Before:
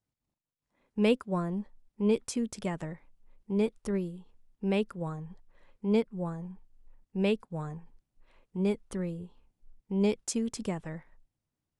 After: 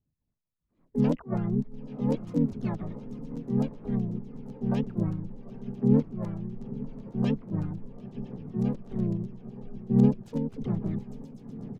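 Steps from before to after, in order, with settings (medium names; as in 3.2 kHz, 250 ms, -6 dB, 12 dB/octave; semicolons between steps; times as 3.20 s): FFT filter 240 Hz 0 dB, 410 Hz -12 dB, 940 Hz -12 dB, 2 kHz -19 dB, 4.5 kHz -17 dB; echo that smears into a reverb 946 ms, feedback 60%, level -13.5 dB; phaser 1.2 Hz, delay 2.2 ms, feedback 42%; LFO low-pass saw down 8 Hz 580–6000 Hz; harmony voices -7 st -2 dB, +3 st -1 dB, +12 st -8 dB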